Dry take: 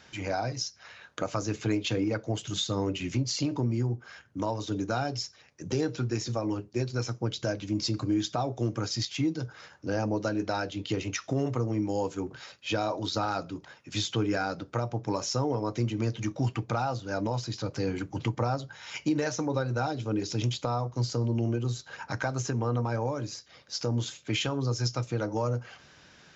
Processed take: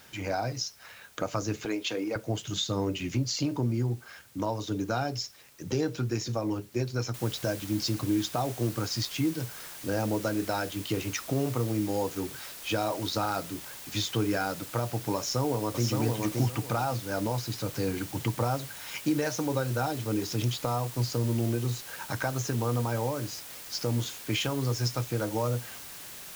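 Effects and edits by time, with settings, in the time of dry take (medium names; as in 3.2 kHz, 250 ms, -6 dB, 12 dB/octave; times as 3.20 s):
1.65–2.16 s: high-pass 340 Hz
7.14 s: noise floor step -58 dB -44 dB
15.17–15.87 s: echo throw 570 ms, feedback 25%, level -3.5 dB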